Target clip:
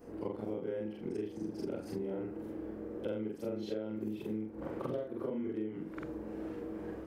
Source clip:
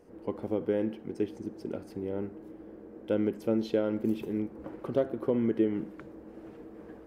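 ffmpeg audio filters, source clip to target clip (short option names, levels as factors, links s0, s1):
-af "afftfilt=real='re':imag='-im':win_size=4096:overlap=0.75,acompressor=threshold=0.00708:ratio=12,volume=2.82"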